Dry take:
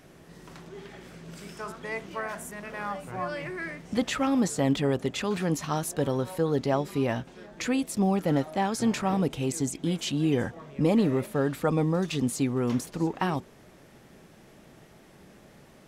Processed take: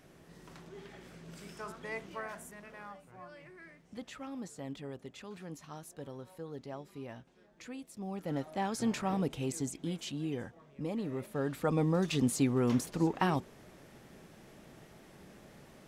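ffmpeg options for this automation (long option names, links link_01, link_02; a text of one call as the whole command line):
ffmpeg -i in.wav -af "volume=17.5dB,afade=type=out:start_time=1.97:duration=1.1:silence=0.251189,afade=type=in:start_time=8.01:duration=0.69:silence=0.266073,afade=type=out:start_time=9.45:duration=1.07:silence=0.421697,afade=type=in:start_time=11.03:duration=1.13:silence=0.251189" out.wav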